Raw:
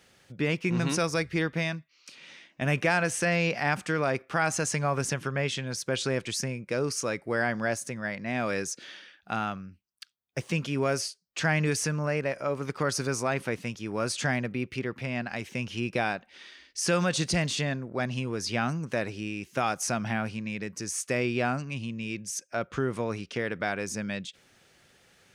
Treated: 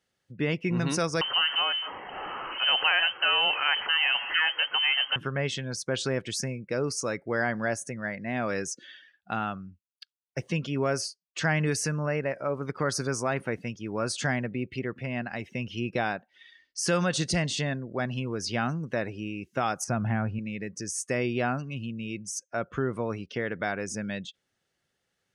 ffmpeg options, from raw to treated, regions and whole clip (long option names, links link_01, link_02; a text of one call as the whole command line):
ffmpeg -i in.wav -filter_complex "[0:a]asettb=1/sr,asplit=3[link_01][link_02][link_03];[link_01]atrim=end=1.214[link_04];[link_02]atrim=start=1.21:end=5.16,asetpts=PTS-STARTPTS,afade=type=in:duration=0.004:curve=qsin,afade=type=out:start_time=3.946:duration=0.004:curve=qsin,aeval=exprs='val(0)+0.5*0.0398*sgn(val(0))':channel_layout=same,lowpass=frequency=2700:width_type=q:width=0.5098,lowpass=frequency=2700:width_type=q:width=0.6013,lowpass=frequency=2700:width_type=q:width=0.9,lowpass=frequency=2700:width_type=q:width=2.563,afreqshift=-3200,bandreject=frequency=650:width=16[link_05];[link_03]atrim=start=5.156[link_06];[link_04][link_05]acrossfade=duration=0.004:curve1=hsin:curve2=qsin[link_07];[link_07][link_06]acrossfade=duration=0.004:curve1=qsin:curve2=hsin,asettb=1/sr,asplit=3[link_08][link_09][link_10];[link_08]atrim=end=19.844[link_11];[link_09]atrim=start=19.84:end=20.39,asetpts=PTS-STARTPTS,afade=type=in:duration=0.004:curve=qsin,afade=type=out:start_time=0.546:duration=0.004:curve=qsin,lowpass=frequency=2000:poles=1,equalizer=frequency=78:width_type=o:width=1.4:gain=10.5[link_12];[link_10]atrim=start=20.386[link_13];[link_11][link_12]acrossfade=duration=0.004:curve1=hsin:curve2=qsin[link_14];[link_14][link_13]acrossfade=duration=0.004:curve1=qsin:curve2=hsin,afftdn=noise_reduction=18:noise_floor=-45,bandreject=frequency=2400:width=12" out.wav